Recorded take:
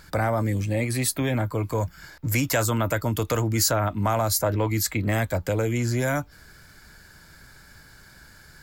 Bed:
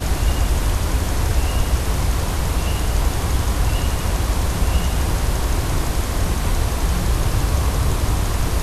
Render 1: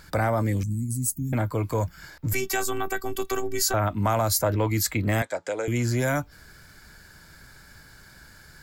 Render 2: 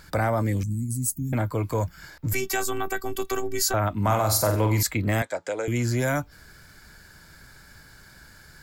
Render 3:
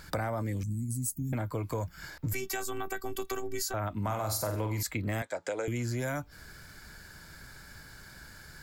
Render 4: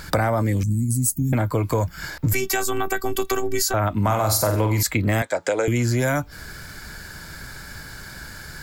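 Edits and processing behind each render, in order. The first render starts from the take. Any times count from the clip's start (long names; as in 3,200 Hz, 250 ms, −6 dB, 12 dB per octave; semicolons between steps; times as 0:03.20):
0:00.63–0:01.33: elliptic band-stop filter 230–6,800 Hz; 0:02.33–0:03.74: phases set to zero 384 Hz; 0:05.22–0:05.68: loudspeaker in its box 460–8,500 Hz, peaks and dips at 1,100 Hz −4 dB, 2,800 Hz −5 dB, 4,400 Hz −4 dB
0:04.03–0:04.83: flutter between parallel walls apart 8 metres, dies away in 0.45 s
downward compressor 4 to 1, threshold −31 dBFS, peak gain reduction 11.5 dB
level +12 dB; brickwall limiter −3 dBFS, peak gain reduction 0.5 dB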